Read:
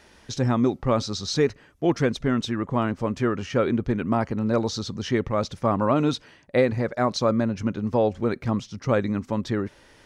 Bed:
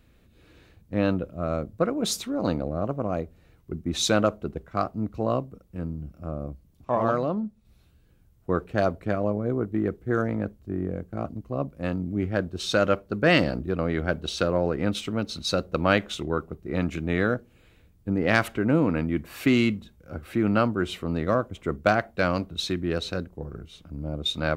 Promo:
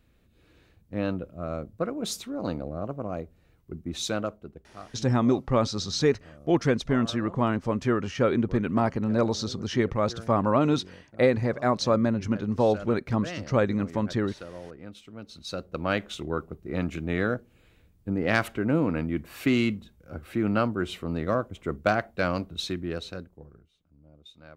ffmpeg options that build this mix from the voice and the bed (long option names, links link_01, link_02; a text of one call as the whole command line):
ffmpeg -i stem1.wav -i stem2.wav -filter_complex "[0:a]adelay=4650,volume=-1dB[link_01];[1:a]volume=10dB,afade=type=out:start_time=3.84:duration=0.93:silence=0.237137,afade=type=in:start_time=15.07:duration=1.33:silence=0.177828,afade=type=out:start_time=22.58:duration=1.15:silence=0.0891251[link_02];[link_01][link_02]amix=inputs=2:normalize=0" out.wav